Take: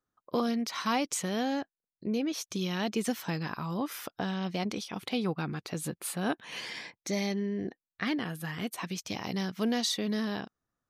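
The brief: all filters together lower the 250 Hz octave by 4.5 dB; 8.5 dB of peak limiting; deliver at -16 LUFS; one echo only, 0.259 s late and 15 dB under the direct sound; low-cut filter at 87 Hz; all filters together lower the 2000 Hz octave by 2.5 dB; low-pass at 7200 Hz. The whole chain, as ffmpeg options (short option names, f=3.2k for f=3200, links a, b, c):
-af "highpass=87,lowpass=7.2k,equalizer=f=250:t=o:g=-5.5,equalizer=f=2k:t=o:g=-3,alimiter=level_in=2.5dB:limit=-24dB:level=0:latency=1,volume=-2.5dB,aecho=1:1:259:0.178,volume=21.5dB"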